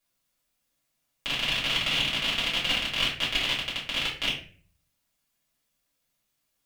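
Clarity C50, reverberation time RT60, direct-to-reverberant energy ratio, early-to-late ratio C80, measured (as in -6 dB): 6.5 dB, 0.45 s, -8.0 dB, 11.0 dB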